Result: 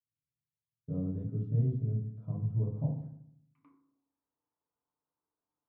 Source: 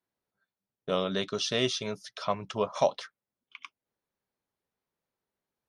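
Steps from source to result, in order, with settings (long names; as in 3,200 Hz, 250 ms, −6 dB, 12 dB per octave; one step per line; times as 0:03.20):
noise gate −49 dBFS, range −13 dB
low-pass filter sweep 130 Hz → 1,100 Hz, 0:03.35–0:04.11
feedback delay network reverb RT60 0.69 s, low-frequency decay 1.35×, high-frequency decay 0.35×, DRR −3 dB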